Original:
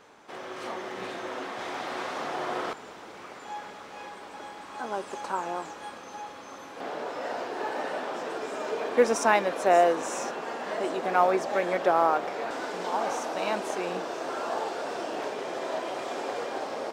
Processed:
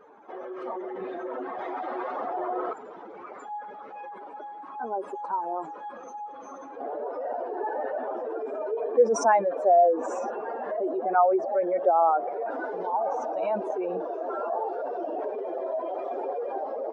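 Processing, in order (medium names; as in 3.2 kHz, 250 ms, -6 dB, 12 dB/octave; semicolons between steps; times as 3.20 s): spectral contrast enhancement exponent 2.3; trim +2 dB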